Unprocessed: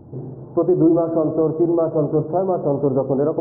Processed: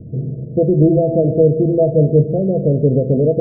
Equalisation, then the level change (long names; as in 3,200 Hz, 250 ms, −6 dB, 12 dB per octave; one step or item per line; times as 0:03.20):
Chebyshev low-pass with heavy ripple 680 Hz, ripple 9 dB
low-shelf EQ 100 Hz +8 dB
low-shelf EQ 360 Hz +6.5 dB
+5.0 dB